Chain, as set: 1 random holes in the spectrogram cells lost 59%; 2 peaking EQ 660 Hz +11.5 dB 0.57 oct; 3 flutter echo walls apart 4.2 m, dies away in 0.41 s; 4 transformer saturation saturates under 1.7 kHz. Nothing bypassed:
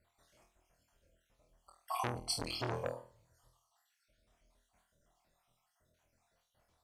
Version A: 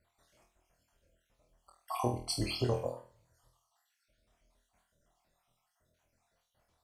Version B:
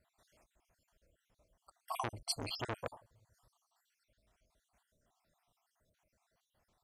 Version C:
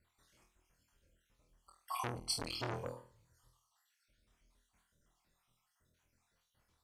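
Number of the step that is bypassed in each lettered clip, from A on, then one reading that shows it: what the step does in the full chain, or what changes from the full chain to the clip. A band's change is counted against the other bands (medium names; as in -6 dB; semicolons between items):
4, crest factor change -4.0 dB; 3, momentary loudness spread change +2 LU; 2, 500 Hz band -2.0 dB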